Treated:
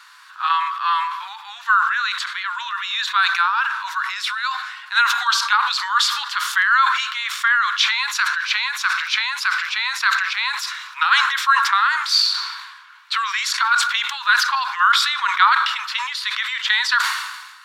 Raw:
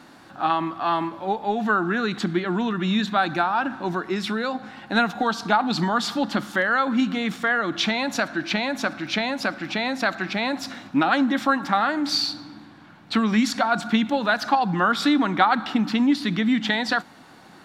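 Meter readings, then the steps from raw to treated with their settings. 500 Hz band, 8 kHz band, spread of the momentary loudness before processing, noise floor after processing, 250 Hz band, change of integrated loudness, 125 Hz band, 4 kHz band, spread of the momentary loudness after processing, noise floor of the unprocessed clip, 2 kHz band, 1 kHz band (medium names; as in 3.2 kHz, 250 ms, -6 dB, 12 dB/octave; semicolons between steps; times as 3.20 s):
under -30 dB, +9.5 dB, 6 LU, -41 dBFS, under -40 dB, +4.5 dB, under -40 dB, +8.5 dB, 9 LU, -48 dBFS, +8.0 dB, +4.5 dB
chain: Chebyshev high-pass 1 kHz, order 6; decay stretcher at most 48 dB/s; trim +6.5 dB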